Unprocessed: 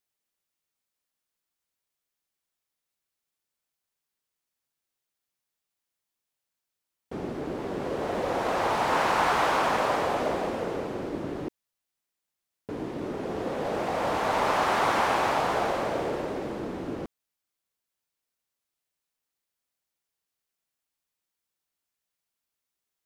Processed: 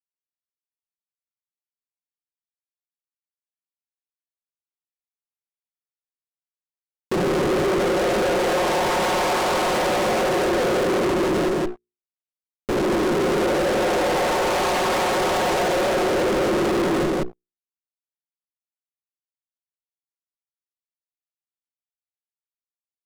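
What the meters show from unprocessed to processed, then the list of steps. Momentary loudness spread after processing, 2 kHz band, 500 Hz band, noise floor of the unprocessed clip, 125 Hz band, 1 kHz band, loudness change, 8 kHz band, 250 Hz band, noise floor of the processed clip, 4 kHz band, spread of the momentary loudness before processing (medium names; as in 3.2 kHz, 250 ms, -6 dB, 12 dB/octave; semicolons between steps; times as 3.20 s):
3 LU, +6.0 dB, +9.5 dB, under -85 dBFS, +8.0 dB, +3.5 dB, +7.0 dB, +11.5 dB, +10.0 dB, under -85 dBFS, +9.0 dB, 12 LU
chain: CVSD coder 64 kbps; Schmitt trigger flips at -40.5 dBFS; peaking EQ 380 Hz +8.5 dB 1.7 oct; delay 168 ms -4.5 dB; reverse; upward compressor, threshold -37 dBFS; reverse; hum notches 60/120/180/240/300/360/420/480 Hz; dynamic bell 480 Hz, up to +4 dB, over -41 dBFS, Q 1.1; low-pass 9.4 kHz 12 dB/octave; comb 5.5 ms, depth 65%; waveshaping leveller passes 5; trim -7.5 dB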